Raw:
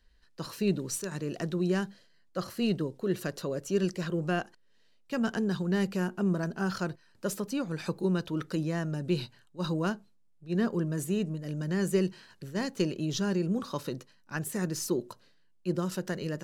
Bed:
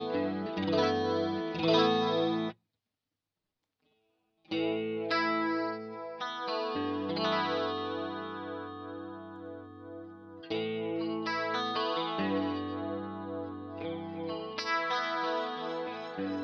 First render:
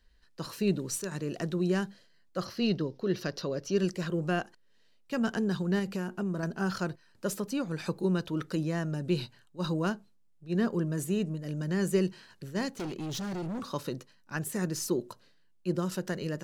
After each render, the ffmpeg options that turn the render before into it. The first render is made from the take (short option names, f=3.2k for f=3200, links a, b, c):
-filter_complex "[0:a]asettb=1/sr,asplit=3[a][b][c];[a]atrim=end=2.454[d];[b]atrim=start=2.45:end=3.78,asetpts=PTS-STARTPTS,afade=t=in:d=0.004:c=qsin,afade=t=out:st=1.326:d=0.004:c=qsin,highshelf=f=6.6k:t=q:w=3:g=-8[e];[c]atrim=start=3.776[f];[d][e]acrossfade=d=0.004:c1=hsin:c2=qsin[g];[g][f]acrossfade=d=0.004:c1=qsin:c2=hsin,asettb=1/sr,asplit=3[h][i][j];[h]atrim=end=5.794[k];[i]atrim=start=5.79:end=6.43,asetpts=PTS-STARTPTS,afade=t=in:d=0.004:c=qsin,afade=t=out:st=0.636:d=0.004:c=qsin,acompressor=threshold=-28dB:ratio=6:attack=3.2:release=140:knee=1:detection=peak[l];[j]atrim=start=6.426[m];[k][l]acrossfade=d=0.004:c1=hsin:c2=qsin[n];[n][m]acrossfade=d=0.004:c1=qsin:c2=hsin,asettb=1/sr,asplit=3[o][p][q];[o]atrim=end=12.684[r];[p]atrim=start=12.68:end=13.66,asetpts=PTS-STARTPTS,afade=t=in:d=0.004:c=qsin,afade=t=out:st=0.976:d=0.004:c=qsin,asoftclip=type=hard:threshold=-33dB[s];[q]atrim=start=13.656[t];[r][s]acrossfade=d=0.004:c1=hsin:c2=qsin[u];[u][t]acrossfade=d=0.004:c1=qsin:c2=hsin"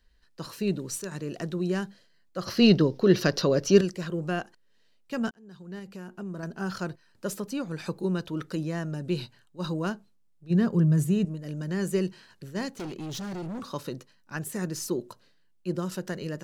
-filter_complex "[0:a]asettb=1/sr,asplit=3[a][b][c];[a]atrim=end=10.504[d];[b]atrim=start=10.5:end=11.25,asetpts=PTS-STARTPTS,afade=t=in:d=0.004:c=qsin,afade=t=out:st=0.746:d=0.004:c=qsin,equalizer=f=150:t=o:w=0.77:g=12.5[e];[c]atrim=start=11.246[f];[d][e]acrossfade=d=0.004:c1=hsin:c2=qsin[g];[g][f]acrossfade=d=0.004:c1=qsin:c2=hsin,asplit=4[h][i][j][k];[h]atrim=end=2.472[l];[i]atrim=start=2.468:end=3.812,asetpts=PTS-STARTPTS,volume=10dB[m];[j]atrim=start=3.808:end=5.31,asetpts=PTS-STARTPTS,afade=t=out:st=1.498:d=0.004:c=hsin[n];[k]atrim=start=5.31,asetpts=PTS-STARTPTS,afade=t=in:d=1.57[o];[l][m]acrossfade=d=0.004:c1=hsin:c2=hsin[p];[n][o]concat=n=2:v=0:a=1[q];[p][q]acrossfade=d=0.004:c1=hsin:c2=hsin"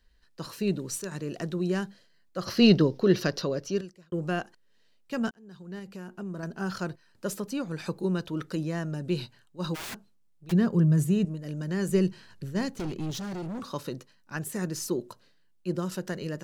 -filter_complex "[0:a]asplit=3[a][b][c];[a]afade=t=out:st=9.74:d=0.02[d];[b]aeval=exprs='(mod(47.3*val(0)+1,2)-1)/47.3':c=same,afade=t=in:st=9.74:d=0.02,afade=t=out:st=10.51:d=0.02[e];[c]afade=t=in:st=10.51:d=0.02[f];[d][e][f]amix=inputs=3:normalize=0,asettb=1/sr,asplit=3[g][h][i];[g]atrim=end=11.894[j];[h]atrim=start=11.89:end=13.11,asetpts=PTS-STARTPTS,afade=t=in:d=0.004:c=qsin,afade=t=out:st=1.216:d=0.004:c=qsin,lowshelf=f=150:g=11.5[k];[i]atrim=start=13.106[l];[j][k]acrossfade=d=0.004:c1=hsin:c2=qsin[m];[m][l]acrossfade=d=0.004:c1=qsin:c2=hsin,asplit=2[n][o];[n]atrim=end=4.12,asetpts=PTS-STARTPTS,afade=t=out:st=2.85:d=1.27[p];[o]atrim=start=4.12,asetpts=PTS-STARTPTS,afade=t=in:d=0.004:c=hsin[q];[p][q]concat=n=2:v=0:a=1"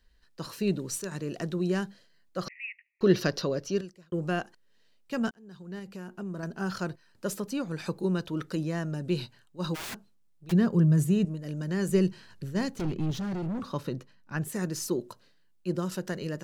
-filter_complex "[0:a]asettb=1/sr,asplit=3[a][b][c];[a]atrim=end=2.484[d];[b]atrim=start=2.48:end=3.01,asetpts=PTS-STARTPTS,afade=t=in:d=0.004:c=qsin,afade=t=out:st=0.526:d=0.004:c=qsin,asuperpass=centerf=2200:order=12:qfactor=3.1[e];[c]atrim=start=3.006[f];[d][e]acrossfade=d=0.004:c1=hsin:c2=qsin[g];[g][f]acrossfade=d=0.004:c1=qsin:c2=hsin,asettb=1/sr,asplit=3[h][i][j];[h]atrim=end=12.814[k];[i]atrim=start=12.81:end=14.48,asetpts=PTS-STARTPTS,afade=t=in:d=0.004:c=qsin,afade=t=out:st=1.666:d=0.004:c=qsin,bass=f=250:g=5,treble=f=4k:g=-7[l];[j]atrim=start=14.476[m];[k][l]acrossfade=d=0.004:c1=hsin:c2=qsin[n];[n][m]acrossfade=d=0.004:c1=qsin:c2=hsin"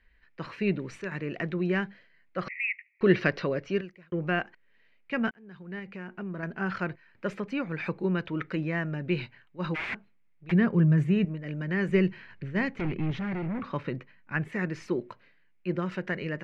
-af "lowpass=f=2.2k:t=q:w=4.7"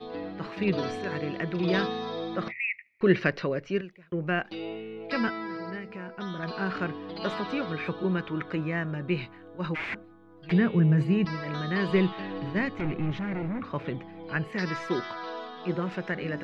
-filter_complex "[1:a]volume=-5dB[a];[0:a][a]amix=inputs=2:normalize=0"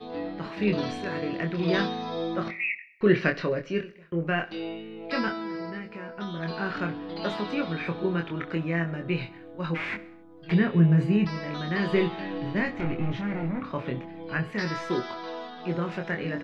-filter_complex "[0:a]asplit=2[a][b];[b]adelay=24,volume=-4.5dB[c];[a][c]amix=inputs=2:normalize=0,aecho=1:1:66|132|198|264:0.112|0.0595|0.0315|0.0167"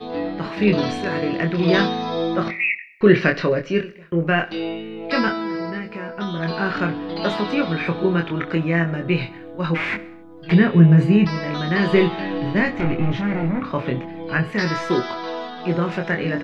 -af "volume=8dB,alimiter=limit=-2dB:level=0:latency=1"